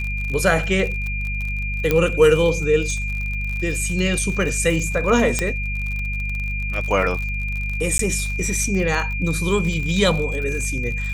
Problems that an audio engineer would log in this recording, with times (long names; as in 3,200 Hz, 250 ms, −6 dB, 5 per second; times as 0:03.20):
surface crackle 52 per second −26 dBFS
mains hum 50 Hz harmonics 4 −26 dBFS
whistle 2,400 Hz −27 dBFS
0:01.91: click −5 dBFS
0:05.39: click −5 dBFS
0:07.98–0:07.99: drop-out 13 ms